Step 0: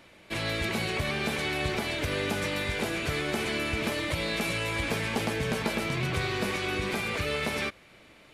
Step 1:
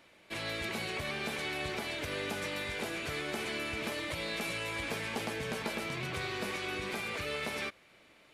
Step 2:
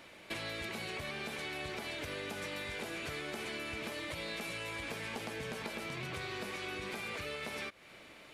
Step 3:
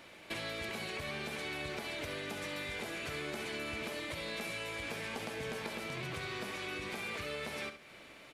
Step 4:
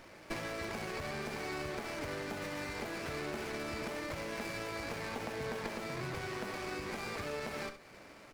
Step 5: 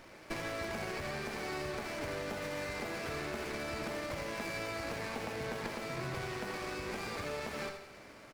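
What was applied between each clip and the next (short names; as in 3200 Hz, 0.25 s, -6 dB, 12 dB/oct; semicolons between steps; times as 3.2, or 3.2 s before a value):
low shelf 200 Hz -7.5 dB; gain -5.5 dB
compressor 12:1, threshold -44 dBFS, peak gain reduction 13.5 dB; gain +6.5 dB
feedback echo 68 ms, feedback 30%, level -10 dB
running maximum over 9 samples; gain +1.5 dB
feedback echo 83 ms, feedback 55%, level -8.5 dB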